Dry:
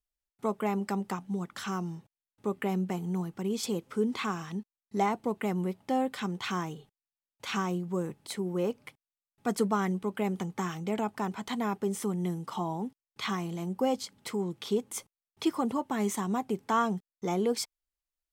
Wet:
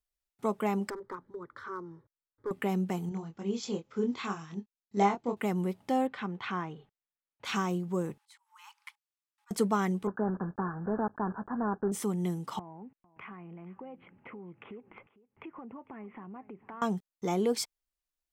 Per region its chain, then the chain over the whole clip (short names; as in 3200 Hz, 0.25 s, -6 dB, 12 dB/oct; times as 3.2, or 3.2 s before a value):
0.9–2.51 air absorption 360 m + hard clip -25.5 dBFS + fixed phaser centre 740 Hz, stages 6
3.09–5.37 brick-wall FIR low-pass 7700 Hz + doubler 25 ms -4 dB + upward expander, over -41 dBFS
6.07–7.45 LPF 2000 Hz + tilt shelf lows -3.5 dB, about 1200 Hz
8.18–9.51 high shelf 11000 Hz -6.5 dB + auto swell 0.457 s + Chebyshev high-pass 830 Hz, order 10
10.07–11.92 block floating point 3-bit + Chebyshev low-pass 1700 Hz, order 8
12.59–16.82 steep low-pass 2700 Hz 72 dB/oct + compressor 5:1, threshold -44 dBFS + echo 0.451 s -19.5 dB
whole clip: dry